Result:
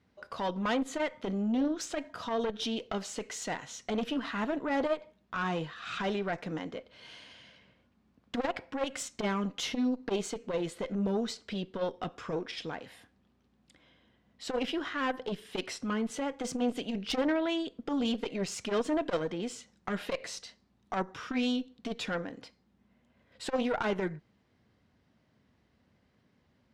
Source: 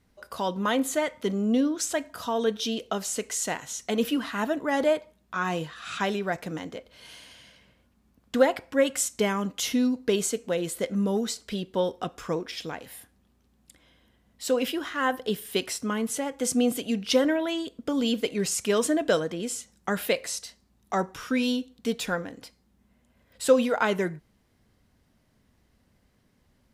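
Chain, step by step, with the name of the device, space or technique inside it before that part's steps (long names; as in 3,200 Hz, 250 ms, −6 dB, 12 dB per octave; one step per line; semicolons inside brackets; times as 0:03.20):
valve radio (band-pass filter 85–4,400 Hz; tube saturation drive 21 dB, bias 0.45; saturating transformer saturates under 320 Hz)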